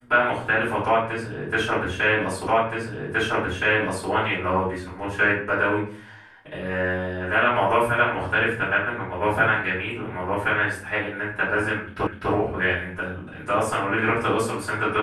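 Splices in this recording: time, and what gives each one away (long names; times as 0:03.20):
0:02.47: the same again, the last 1.62 s
0:12.07: the same again, the last 0.25 s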